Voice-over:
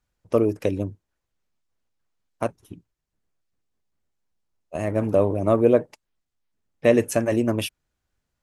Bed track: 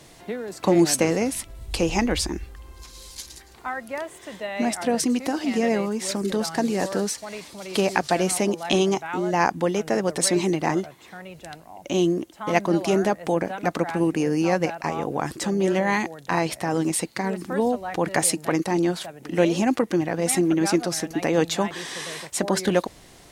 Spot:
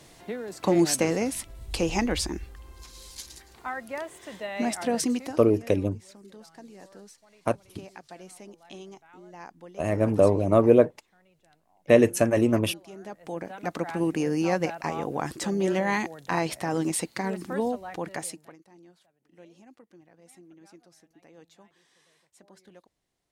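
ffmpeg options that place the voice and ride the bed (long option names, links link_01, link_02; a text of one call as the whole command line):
ffmpeg -i stem1.wav -i stem2.wav -filter_complex "[0:a]adelay=5050,volume=0dB[link_01];[1:a]volume=16.5dB,afade=type=out:start_time=5.11:duration=0.32:silence=0.1,afade=type=in:start_time=12.97:duration=1.17:silence=0.1,afade=type=out:start_time=17.44:duration=1.12:silence=0.0375837[link_02];[link_01][link_02]amix=inputs=2:normalize=0" out.wav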